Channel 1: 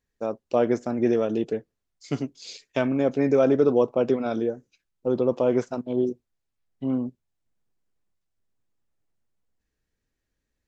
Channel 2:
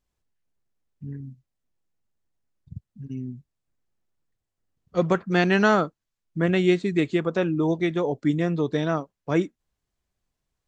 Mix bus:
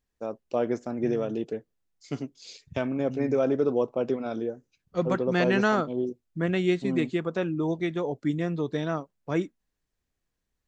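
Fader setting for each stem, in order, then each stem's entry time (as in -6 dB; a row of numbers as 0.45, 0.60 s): -5.0, -4.5 dB; 0.00, 0.00 s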